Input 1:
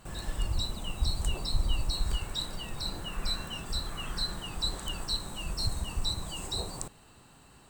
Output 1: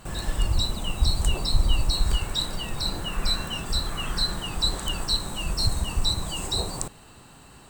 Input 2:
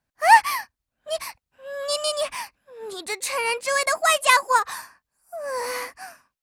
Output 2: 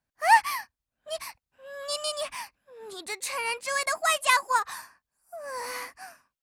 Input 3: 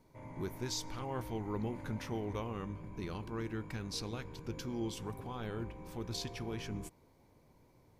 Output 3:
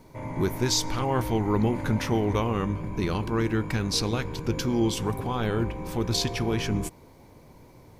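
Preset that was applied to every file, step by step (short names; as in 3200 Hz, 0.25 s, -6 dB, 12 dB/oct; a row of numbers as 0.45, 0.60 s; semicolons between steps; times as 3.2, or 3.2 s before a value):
dynamic EQ 500 Hz, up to -5 dB, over -41 dBFS, Q 2.4; match loudness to -27 LUFS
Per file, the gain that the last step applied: +7.5, -5.0, +14.0 dB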